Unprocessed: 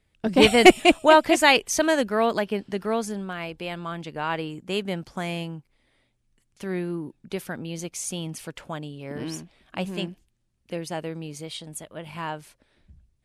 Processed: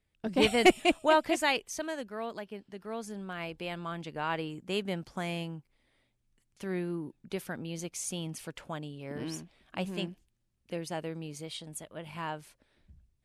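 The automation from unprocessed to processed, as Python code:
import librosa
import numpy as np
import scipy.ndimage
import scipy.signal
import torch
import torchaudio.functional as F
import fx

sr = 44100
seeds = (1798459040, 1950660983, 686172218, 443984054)

y = fx.gain(x, sr, db=fx.line((1.29, -9.0), (1.94, -15.5), (2.78, -15.5), (3.41, -5.0)))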